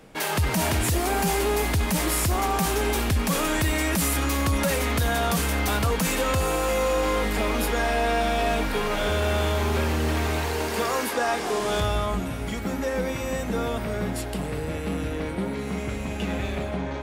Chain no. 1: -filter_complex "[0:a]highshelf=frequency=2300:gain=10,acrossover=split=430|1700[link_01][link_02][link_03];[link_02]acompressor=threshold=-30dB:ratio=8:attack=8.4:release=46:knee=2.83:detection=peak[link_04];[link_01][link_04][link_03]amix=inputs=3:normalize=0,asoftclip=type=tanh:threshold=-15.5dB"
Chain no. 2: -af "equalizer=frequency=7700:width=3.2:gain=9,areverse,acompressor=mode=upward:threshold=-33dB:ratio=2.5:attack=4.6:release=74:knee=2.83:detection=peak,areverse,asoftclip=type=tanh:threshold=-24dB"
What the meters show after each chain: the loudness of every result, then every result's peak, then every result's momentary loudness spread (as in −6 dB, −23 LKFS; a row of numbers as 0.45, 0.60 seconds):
−23.5, −28.5 LKFS; −15.5, −24.0 dBFS; 9, 5 LU